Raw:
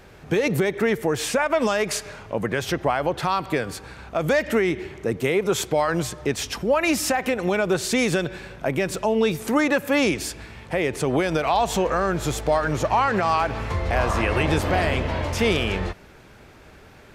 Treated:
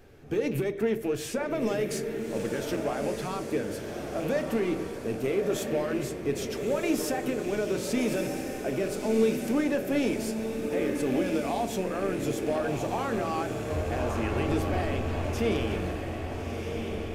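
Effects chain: rattling part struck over -27 dBFS, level -23 dBFS; graphic EQ 125/250/1000/2000/4000/8000 Hz -5/+3/-8/-4/-5/-4 dB; in parallel at -5 dB: soft clip -26 dBFS, distortion -8 dB; on the sum: flange 0.15 Hz, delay 2.4 ms, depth 1.6 ms, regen -77%; diffused feedback echo 1.296 s, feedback 49%, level -5 dB; on a send at -9 dB: reverb RT60 0.35 s, pre-delay 3 ms; on the sum: gain -4.5 dB

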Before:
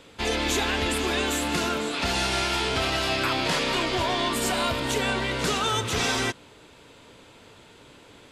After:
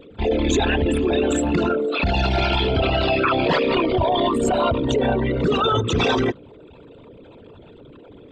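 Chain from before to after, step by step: formant sharpening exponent 3; gain +6.5 dB

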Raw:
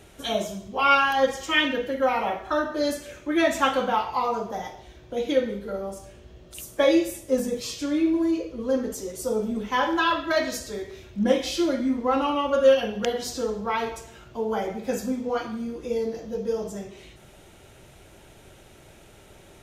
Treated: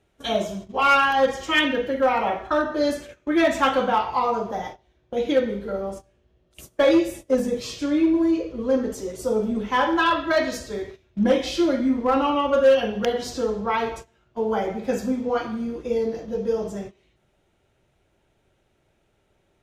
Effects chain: gate -38 dBFS, range -19 dB; high shelf 6000 Hz -10.5 dB; in parallel at -7 dB: wavefolder -16.5 dBFS

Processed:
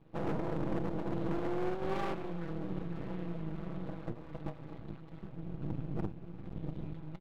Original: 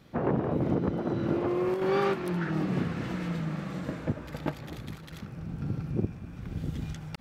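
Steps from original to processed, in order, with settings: median filter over 15 samples; steep low-pass 3900 Hz 48 dB/oct; bell 1600 Hz -7 dB 0.83 oct; comb 6.1 ms, depth 98%; 2.16–4.55 compressor 4:1, threshold -27 dBFS, peak gain reduction 6.5 dB; overloaded stage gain 21 dB; flange 1.2 Hz, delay 8.3 ms, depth 3.5 ms, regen +77%; half-wave rectifier; echo 0.395 s -20.5 dB

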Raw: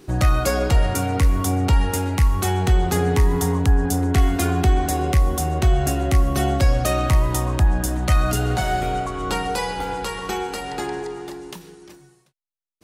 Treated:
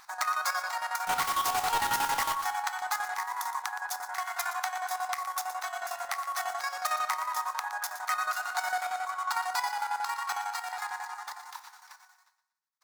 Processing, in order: median filter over 5 samples; steep high-pass 840 Hz 48 dB/oct; bell 2900 Hz -14.5 dB 0.67 oct; in parallel at +2 dB: compressor, threshold -43 dBFS, peak gain reduction 15.5 dB; 1.07–2.34 on the sum: companded quantiser 2-bit; vibrato 9.9 Hz 16 cents; chopper 11 Hz, depth 65%, duty 55%; feedback echo 0.118 s, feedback 40%, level -12.5 dB; reverb RT60 0.50 s, pre-delay 7 ms, DRR 13.5 dB

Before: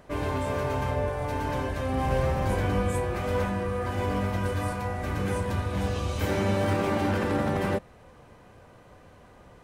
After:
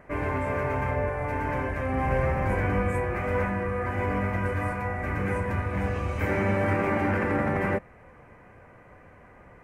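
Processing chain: resonant high shelf 2800 Hz -9 dB, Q 3

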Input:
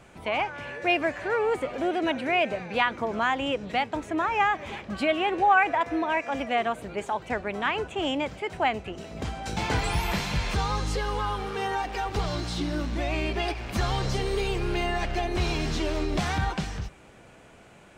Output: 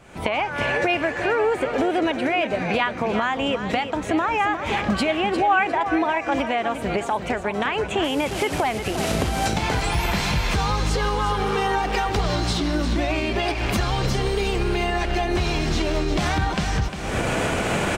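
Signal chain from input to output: 8.04–9.47 delta modulation 64 kbps, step -36.5 dBFS; recorder AGC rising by 57 dB/s; feedback echo 0.353 s, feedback 30%, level -9.5 dB; gain +1 dB

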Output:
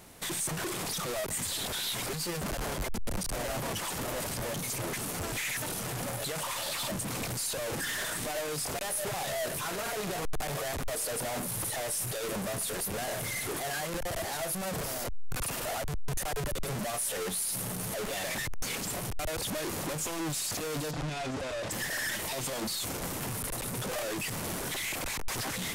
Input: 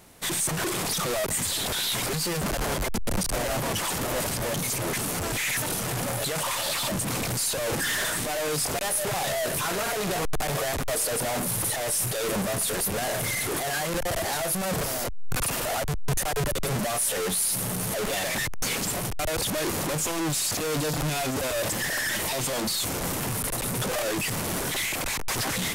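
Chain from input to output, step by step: limiter -25.5 dBFS, peak gain reduction 9 dB; 20.91–21.71 air absorption 83 m

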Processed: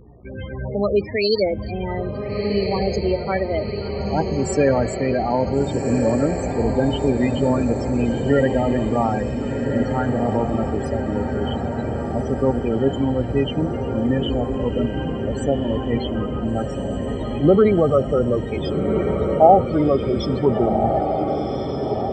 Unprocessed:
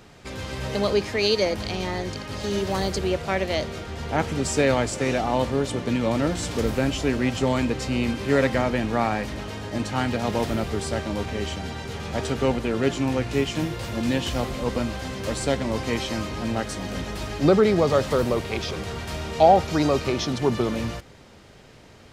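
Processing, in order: loudest bins only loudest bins 16; diffused feedback echo 1.458 s, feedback 61%, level -5.5 dB; buzz 60 Hz, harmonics 20, -54 dBFS -7 dB/oct; gain +3.5 dB

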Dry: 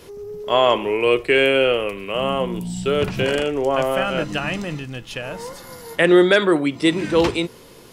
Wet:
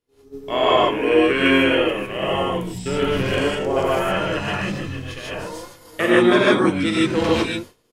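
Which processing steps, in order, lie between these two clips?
harmoniser -7 st -5 dB; non-linear reverb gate 0.18 s rising, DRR -5.5 dB; expander -23 dBFS; gain -7 dB

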